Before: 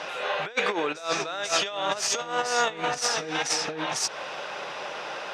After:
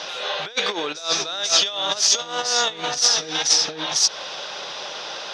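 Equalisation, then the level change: band shelf 4500 Hz +11.5 dB 1.2 oct; 0.0 dB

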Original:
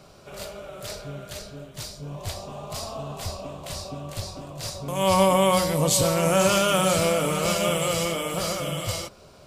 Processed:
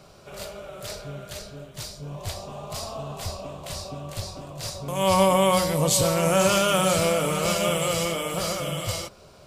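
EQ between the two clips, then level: bell 270 Hz -3 dB 0.37 oct; 0.0 dB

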